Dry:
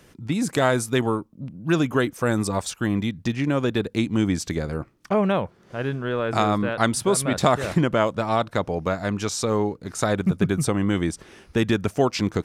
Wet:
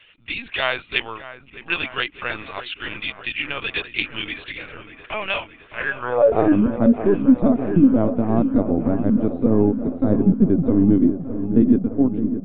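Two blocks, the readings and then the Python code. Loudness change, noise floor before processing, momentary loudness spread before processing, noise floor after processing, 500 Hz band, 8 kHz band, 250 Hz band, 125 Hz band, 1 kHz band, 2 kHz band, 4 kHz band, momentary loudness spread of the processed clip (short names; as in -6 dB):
+4.0 dB, -55 dBFS, 7 LU, -48 dBFS, +1.0 dB, under -40 dB, +6.0 dB, -0.5 dB, -4.0 dB, +3.5 dB, +2.5 dB, 14 LU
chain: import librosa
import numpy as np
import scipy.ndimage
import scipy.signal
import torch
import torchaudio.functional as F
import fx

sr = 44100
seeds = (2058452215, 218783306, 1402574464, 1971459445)

p1 = fx.fade_out_tail(x, sr, length_s=0.86)
p2 = fx.low_shelf(p1, sr, hz=150.0, db=9.0)
p3 = fx.filter_sweep_bandpass(p2, sr, from_hz=2700.0, to_hz=260.0, start_s=5.7, end_s=6.57, q=4.5)
p4 = fx.rider(p3, sr, range_db=5, speed_s=0.5)
p5 = p3 + F.gain(torch.from_numpy(p4), -3.0).numpy()
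p6 = fx.lpc_vocoder(p5, sr, seeds[0], excitation='pitch_kept', order=16)
p7 = p6 + fx.echo_wet_lowpass(p6, sr, ms=614, feedback_pct=66, hz=1700.0, wet_db=-10.5, dry=0)
p8 = fx.dynamic_eq(p7, sr, hz=710.0, q=0.74, threshold_db=-40.0, ratio=4.0, max_db=5)
y = F.gain(torch.from_numpy(p8), 7.5).numpy()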